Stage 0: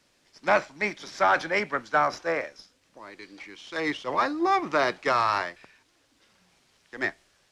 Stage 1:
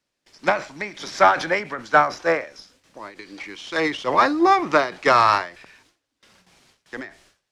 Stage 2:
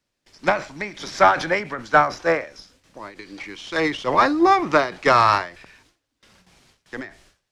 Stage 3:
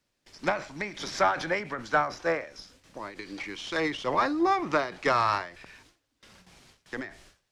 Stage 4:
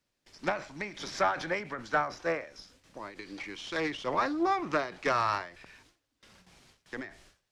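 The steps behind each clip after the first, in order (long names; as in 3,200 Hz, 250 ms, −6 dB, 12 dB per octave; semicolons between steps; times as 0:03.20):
noise gate with hold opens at −53 dBFS; every ending faded ahead of time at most 150 dB per second; level +8 dB
low-shelf EQ 130 Hz +9 dB
downward compressor 1.5 to 1, threshold −37 dBFS, peak gain reduction 10 dB
highs frequency-modulated by the lows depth 0.13 ms; level −3.5 dB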